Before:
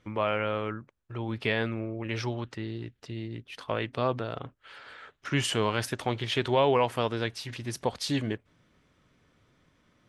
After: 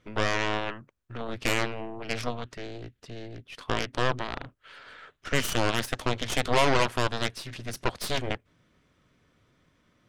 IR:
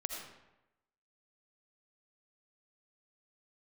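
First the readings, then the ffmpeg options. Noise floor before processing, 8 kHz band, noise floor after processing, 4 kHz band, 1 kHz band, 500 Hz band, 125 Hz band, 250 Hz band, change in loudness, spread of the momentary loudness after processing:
-69 dBFS, +4.0 dB, -69 dBFS, +2.5 dB, +1.5 dB, -1.5 dB, -1.5 dB, -1.5 dB, +1.0 dB, 18 LU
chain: -af "aeval=exprs='0.266*(cos(1*acos(clip(val(0)/0.266,-1,1)))-cos(1*PI/2))+0.075*(cos(7*acos(clip(val(0)/0.266,-1,1)))-cos(7*PI/2))+0.0473*(cos(8*acos(clip(val(0)/0.266,-1,1)))-cos(8*PI/2))':c=same,bandreject=f=840:w=15"

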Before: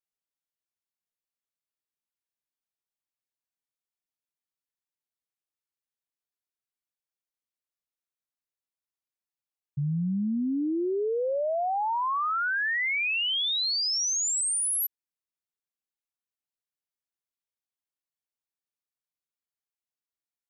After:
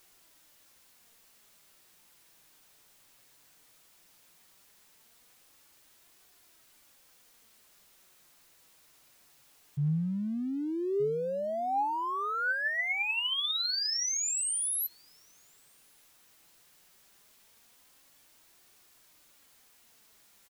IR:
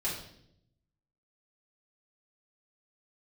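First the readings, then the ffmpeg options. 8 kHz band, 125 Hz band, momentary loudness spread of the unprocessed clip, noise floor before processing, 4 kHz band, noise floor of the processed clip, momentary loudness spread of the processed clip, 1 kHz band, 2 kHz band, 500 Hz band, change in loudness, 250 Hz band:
-4.0 dB, -1.0 dB, 4 LU, under -85 dBFS, -4.0 dB, -63 dBFS, 6 LU, -4.0 dB, -3.5 dB, -3.5 dB, -4.0 dB, -4.5 dB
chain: -filter_complex "[0:a]aeval=exprs='val(0)+0.5*0.00398*sgn(val(0))':c=same,flanger=delay=2.6:depth=4.7:regen=66:speed=0.16:shape=triangular,asplit=2[s0][s1];[s1]adelay=1224,volume=0.178,highshelf=f=4000:g=-27.6[s2];[s0][s2]amix=inputs=2:normalize=0"

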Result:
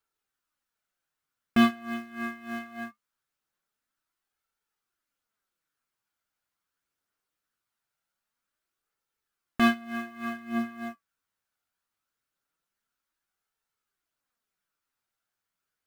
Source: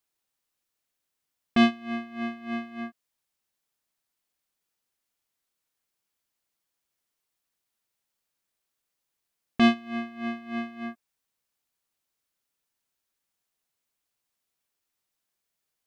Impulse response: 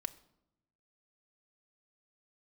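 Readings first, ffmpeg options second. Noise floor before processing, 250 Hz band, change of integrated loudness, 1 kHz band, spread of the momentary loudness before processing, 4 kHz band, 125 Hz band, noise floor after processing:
-83 dBFS, -1.5 dB, -1.0 dB, 0.0 dB, 16 LU, -3.0 dB, -1.0 dB, under -85 dBFS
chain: -af "highshelf=f=3400:g=-4.5,acrusher=bits=5:mode=log:mix=0:aa=0.000001,flanger=delay=2.2:depth=8.8:regen=58:speed=0.22:shape=sinusoidal,equalizer=f=1400:t=o:w=0.49:g=9.5,aphaser=in_gain=1:out_gain=1:delay=1.5:decay=0.21:speed=0.56:type=triangular,volume=1.26"

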